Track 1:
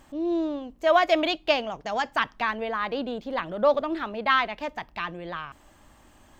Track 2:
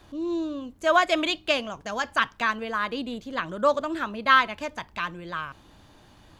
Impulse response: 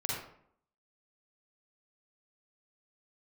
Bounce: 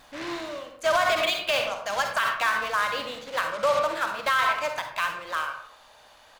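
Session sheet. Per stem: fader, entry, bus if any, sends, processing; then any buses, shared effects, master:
-6.0 dB, 0.00 s, send -11 dB, reverb removal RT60 0.82 s; noise-modulated delay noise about 1600 Hz, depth 0.38 ms; auto duck -12 dB, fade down 0.45 s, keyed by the second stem
0.0 dB, 1.1 ms, send -5.5 dB, steep high-pass 490 Hz 48 dB/oct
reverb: on, RT60 0.65 s, pre-delay 40 ms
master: notches 50/100 Hz; limiter -13.5 dBFS, peak gain reduction 11 dB

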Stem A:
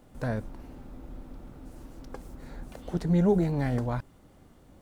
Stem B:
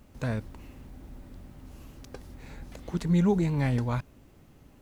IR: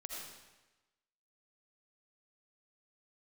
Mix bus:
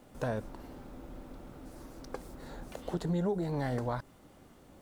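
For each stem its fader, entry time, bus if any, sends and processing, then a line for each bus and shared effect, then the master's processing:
+1.5 dB, 0.00 s, no send, dry
-8.5 dB, 0.00 s, no send, HPF 250 Hz 24 dB/oct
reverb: off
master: low shelf 150 Hz -8 dB; compressor 6:1, threshold -29 dBFS, peak gain reduction 11 dB

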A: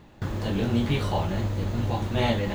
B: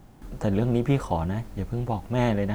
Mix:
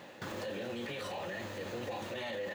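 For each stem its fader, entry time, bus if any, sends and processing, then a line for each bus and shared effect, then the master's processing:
+2.5 dB, 0.00 s, no send, HPF 190 Hz 12 dB/oct; tilt shelf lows -4 dB, about 760 Hz; auto duck -9 dB, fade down 0.75 s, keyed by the second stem
-2.0 dB, 1.9 ms, no send, low shelf 400 Hz -10.5 dB; overdrive pedal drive 30 dB, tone 5100 Hz, clips at -14 dBFS; vowel filter e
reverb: off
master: limiter -31.5 dBFS, peak gain reduction 13 dB

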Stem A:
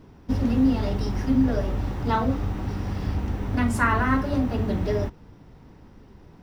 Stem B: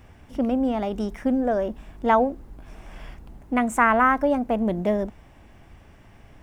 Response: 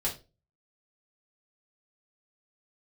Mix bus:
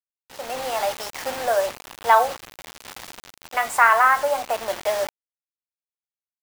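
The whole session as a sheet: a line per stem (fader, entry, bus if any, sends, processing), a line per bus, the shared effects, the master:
+0.5 dB, 0.00 s, send -23.5 dB, high shelf 5300 Hz -2.5 dB; auto duck -9 dB, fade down 0.45 s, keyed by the second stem
-6.0 dB, 1.1 ms, polarity flipped, send -21 dB, dry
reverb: on, RT60 0.30 s, pre-delay 3 ms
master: HPF 630 Hz 24 dB/oct; bit-crush 7-bit; AGC gain up to 11.5 dB

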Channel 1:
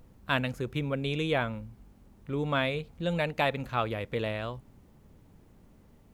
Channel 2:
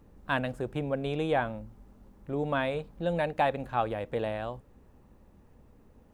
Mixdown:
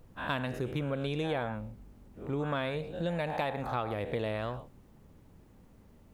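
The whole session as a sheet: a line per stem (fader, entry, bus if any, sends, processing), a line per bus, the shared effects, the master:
-1.0 dB, 0.00 s, no send, dry
-13.0 dB, 0.00 s, no send, spectral dilation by 0.24 s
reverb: off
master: compressor 5:1, threshold -29 dBFS, peak gain reduction 8 dB

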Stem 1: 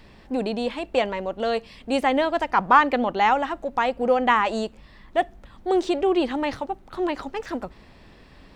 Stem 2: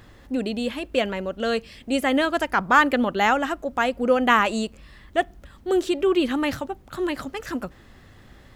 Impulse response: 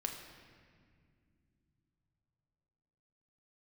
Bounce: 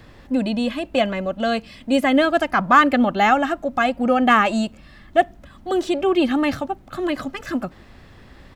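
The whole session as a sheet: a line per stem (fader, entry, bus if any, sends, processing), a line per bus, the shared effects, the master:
-2.0 dB, 0.00 s, no send, high shelf 5300 Hz +10 dB; de-esser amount 60%
+2.5 dB, 1.9 ms, polarity flipped, no send, hard clip -6 dBFS, distortion -38 dB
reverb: off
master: high shelf 4700 Hz -6.5 dB

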